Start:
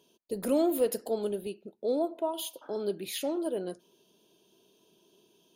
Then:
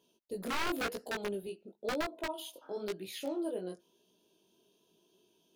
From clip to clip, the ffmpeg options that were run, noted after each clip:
ffmpeg -i in.wav -filter_complex "[0:a]aeval=exprs='(mod(12.6*val(0)+1,2)-1)/12.6':channel_layout=same,flanger=delay=16:depth=6.3:speed=0.97,acrossover=split=5100[link_01][link_02];[link_02]acompressor=threshold=-44dB:ratio=4:attack=1:release=60[link_03];[link_01][link_03]amix=inputs=2:normalize=0,volume=-2.5dB" out.wav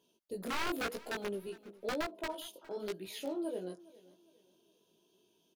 ffmpeg -i in.wav -af "aecho=1:1:410|820|1230:0.0891|0.0312|0.0109,volume=-1.5dB" out.wav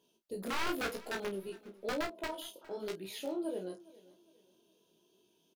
ffmpeg -i in.wav -filter_complex "[0:a]asplit=2[link_01][link_02];[link_02]adelay=31,volume=-9dB[link_03];[link_01][link_03]amix=inputs=2:normalize=0" out.wav

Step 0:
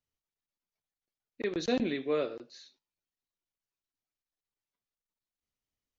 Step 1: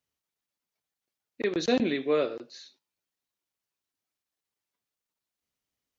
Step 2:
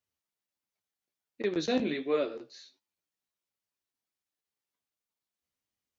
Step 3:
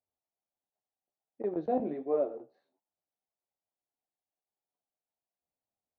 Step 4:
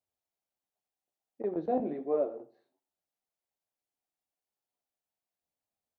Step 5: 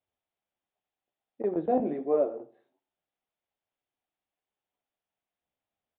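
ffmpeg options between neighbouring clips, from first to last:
ffmpeg -i in.wav -af "highpass=frequency=120:poles=1,volume=5dB" out.wav
ffmpeg -i in.wav -af "flanger=delay=8.8:depth=7.2:regen=36:speed=1.4:shape=triangular" out.wav
ffmpeg -i in.wav -af "lowpass=frequency=740:width_type=q:width=3.6,volume=-5dB" out.wav
ffmpeg -i in.wav -filter_complex "[0:a]asplit=2[link_01][link_02];[link_02]adelay=63,lowpass=frequency=2000:poles=1,volume=-17dB,asplit=2[link_03][link_04];[link_04]adelay=63,lowpass=frequency=2000:poles=1,volume=0.49,asplit=2[link_05][link_06];[link_06]adelay=63,lowpass=frequency=2000:poles=1,volume=0.49,asplit=2[link_07][link_08];[link_08]adelay=63,lowpass=frequency=2000:poles=1,volume=0.49[link_09];[link_01][link_03][link_05][link_07][link_09]amix=inputs=5:normalize=0" out.wav
ffmpeg -i in.wav -af "aresample=8000,aresample=44100,volume=4dB" out.wav

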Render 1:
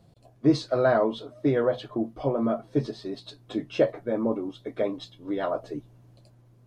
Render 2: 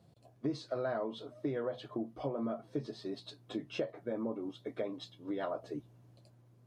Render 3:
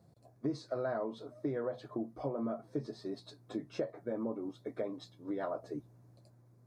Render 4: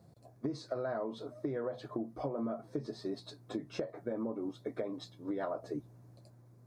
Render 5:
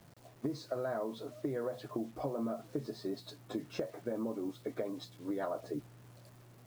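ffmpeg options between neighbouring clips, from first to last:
ffmpeg -i in.wav -af "highpass=77,acompressor=threshold=-28dB:ratio=4,volume=-5.5dB" out.wav
ffmpeg -i in.wav -af "equalizer=frequency=3000:width=2.5:gain=-13.5" out.wav
ffmpeg -i in.wav -af "acompressor=threshold=-36dB:ratio=6,volume=3.5dB" out.wav
ffmpeg -i in.wav -af "acrusher=bits=9:mix=0:aa=0.000001" out.wav

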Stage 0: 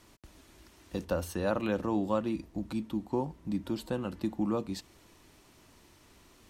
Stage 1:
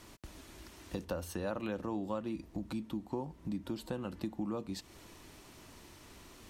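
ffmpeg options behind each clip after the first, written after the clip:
ffmpeg -i in.wav -af "acompressor=threshold=-44dB:ratio=2.5,volume=4.5dB" out.wav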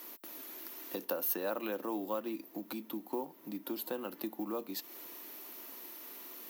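ffmpeg -i in.wav -filter_complex "[0:a]highpass=frequency=270:width=0.5412,highpass=frequency=270:width=1.3066,asplit=2[link_01][link_02];[link_02]acrusher=bits=4:mode=log:mix=0:aa=0.000001,volume=-12dB[link_03];[link_01][link_03]amix=inputs=2:normalize=0,aexciter=amount=14.5:drive=5.3:freq=12000" out.wav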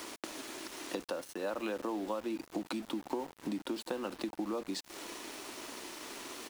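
ffmpeg -i in.wav -af "acompressor=threshold=-46dB:ratio=6,aresample=22050,aresample=44100,aeval=exprs='val(0)*gte(abs(val(0)),0.00126)':channel_layout=same,volume=12.5dB" out.wav

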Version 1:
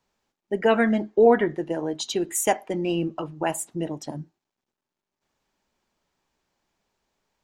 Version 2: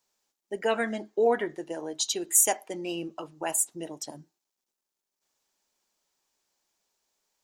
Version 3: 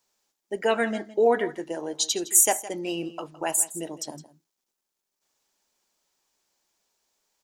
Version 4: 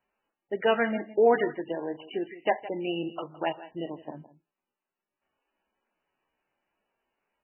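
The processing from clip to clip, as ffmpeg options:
ffmpeg -i in.wav -af "bass=frequency=250:gain=-10,treble=frequency=4000:gain=13,volume=-6dB" out.wav
ffmpeg -i in.wav -af "aecho=1:1:162:0.158,volume=3dB" out.wav
ffmpeg -i in.wav -ar 12000 -c:a libmp3lame -b:a 8k out.mp3

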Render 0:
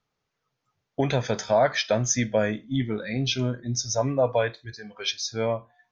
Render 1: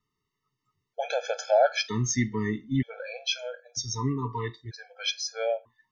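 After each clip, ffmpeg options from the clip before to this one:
ffmpeg -i in.wav -af "afftfilt=real='re*gt(sin(2*PI*0.53*pts/sr)*(1-2*mod(floor(b*sr/1024/440),2)),0)':imag='im*gt(sin(2*PI*0.53*pts/sr)*(1-2*mod(floor(b*sr/1024/440),2)),0)':win_size=1024:overlap=0.75" out.wav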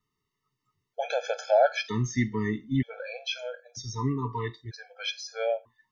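ffmpeg -i in.wav -filter_complex "[0:a]acrossover=split=3300[link_01][link_02];[link_02]acompressor=threshold=-39dB:ratio=4:attack=1:release=60[link_03];[link_01][link_03]amix=inputs=2:normalize=0" out.wav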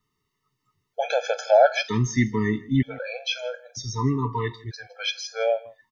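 ffmpeg -i in.wav -af "aecho=1:1:160:0.0841,volume=5dB" out.wav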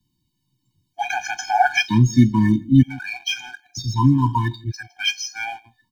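ffmpeg -i in.wav -filter_complex "[0:a]acrossover=split=120|710|2300[link_01][link_02][link_03][link_04];[link_03]aeval=exprs='sgn(val(0))*max(abs(val(0))-0.00398,0)':channel_layout=same[link_05];[link_04]acrusher=bits=6:mode=log:mix=0:aa=0.000001[link_06];[link_01][link_02][link_05][link_06]amix=inputs=4:normalize=0,afftfilt=real='re*eq(mod(floor(b*sr/1024/360),2),0)':imag='im*eq(mod(floor(b*sr/1024/360),2),0)':win_size=1024:overlap=0.75,volume=8.5dB" out.wav

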